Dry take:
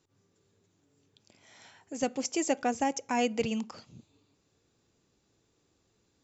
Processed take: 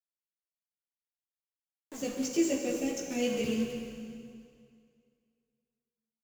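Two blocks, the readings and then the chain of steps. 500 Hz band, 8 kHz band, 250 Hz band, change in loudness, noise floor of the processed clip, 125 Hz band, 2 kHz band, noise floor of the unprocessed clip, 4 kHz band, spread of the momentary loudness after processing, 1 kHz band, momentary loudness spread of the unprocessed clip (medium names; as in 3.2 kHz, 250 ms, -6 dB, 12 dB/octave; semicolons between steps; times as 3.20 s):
-0.5 dB, no reading, +1.5 dB, -1.0 dB, under -85 dBFS, +1.0 dB, -4.0 dB, -74 dBFS, -1.0 dB, 17 LU, -15.0 dB, 14 LU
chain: Chebyshev band-stop 490–2500 Hz, order 2; peaking EQ 200 Hz +4 dB 0.75 oct; hum notches 50/100/150/200/250 Hz; small samples zeroed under -38.5 dBFS; chorus voices 4, 0.51 Hz, delay 16 ms, depth 4.1 ms; on a send: frequency-shifting echo 160 ms, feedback 32%, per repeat -88 Hz, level -19.5 dB; on the sum: plate-style reverb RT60 2.3 s, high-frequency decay 0.9×, DRR 1 dB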